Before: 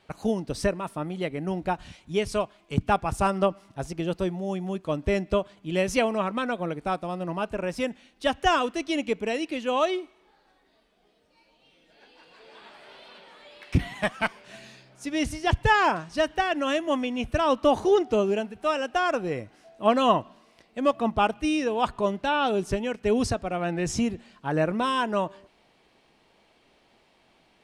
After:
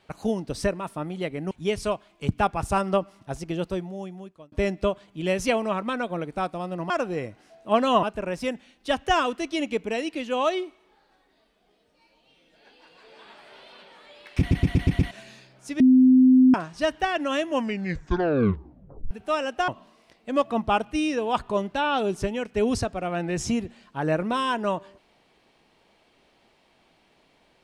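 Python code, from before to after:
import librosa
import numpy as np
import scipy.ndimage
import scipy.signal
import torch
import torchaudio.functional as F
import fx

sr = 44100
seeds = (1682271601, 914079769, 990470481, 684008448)

y = fx.edit(x, sr, fx.cut(start_s=1.51, length_s=0.49),
    fx.fade_out_span(start_s=4.07, length_s=0.94),
    fx.stutter_over(start_s=13.75, slice_s=0.12, count=6),
    fx.bleep(start_s=15.16, length_s=0.74, hz=257.0, db=-11.5),
    fx.tape_stop(start_s=16.82, length_s=1.65),
    fx.move(start_s=19.04, length_s=1.13, to_s=7.39), tone=tone)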